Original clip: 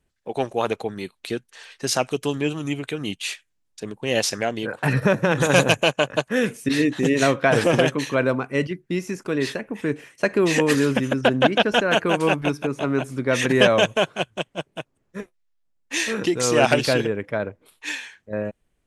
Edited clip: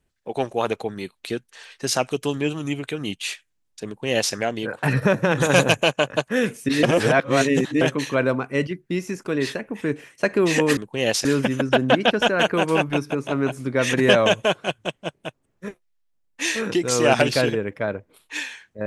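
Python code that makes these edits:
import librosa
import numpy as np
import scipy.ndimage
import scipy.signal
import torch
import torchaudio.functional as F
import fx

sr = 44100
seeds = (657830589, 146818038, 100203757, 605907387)

y = fx.edit(x, sr, fx.duplicate(start_s=3.86, length_s=0.48, to_s=10.77),
    fx.reverse_span(start_s=6.83, length_s=0.98), tone=tone)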